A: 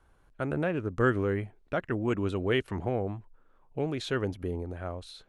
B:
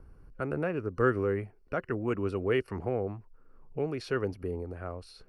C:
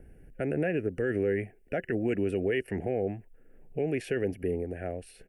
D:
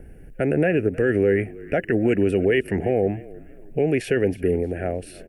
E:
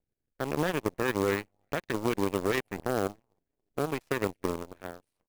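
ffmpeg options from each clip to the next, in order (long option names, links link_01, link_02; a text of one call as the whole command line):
ffmpeg -i in.wav -filter_complex "[0:a]superequalizer=7b=1.58:10b=1.41:13b=0.316:14b=1.41:15b=0.447,acrossover=split=330[link_01][link_02];[link_01]acompressor=mode=upward:threshold=-36dB:ratio=2.5[link_03];[link_03][link_02]amix=inputs=2:normalize=0,volume=-3dB" out.wav
ffmpeg -i in.wav -af "firequalizer=gain_entry='entry(100,0);entry(180,5);entry(730,5);entry(1100,-23);entry(1700,10);entry(2900,7);entry(4200,-10);entry(7800,8)':delay=0.05:min_phase=1,alimiter=limit=-20dB:level=0:latency=1:release=40" out.wav
ffmpeg -i in.wav -filter_complex "[0:a]asplit=4[link_01][link_02][link_03][link_04];[link_02]adelay=313,afreqshift=-38,volume=-20.5dB[link_05];[link_03]adelay=626,afreqshift=-76,volume=-28.7dB[link_06];[link_04]adelay=939,afreqshift=-114,volume=-36.9dB[link_07];[link_01][link_05][link_06][link_07]amix=inputs=4:normalize=0,volume=9dB" out.wav
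ffmpeg -i in.wav -af "acrusher=bits=6:mode=log:mix=0:aa=0.000001,aeval=exprs='0.316*(cos(1*acos(clip(val(0)/0.316,-1,1)))-cos(1*PI/2))+0.1*(cos(3*acos(clip(val(0)/0.316,-1,1)))-cos(3*PI/2))+0.00794*(cos(4*acos(clip(val(0)/0.316,-1,1)))-cos(4*PI/2))+0.01*(cos(6*acos(clip(val(0)/0.316,-1,1)))-cos(6*PI/2))+0.00251*(cos(7*acos(clip(val(0)/0.316,-1,1)))-cos(7*PI/2))':channel_layout=same,volume=-5dB" out.wav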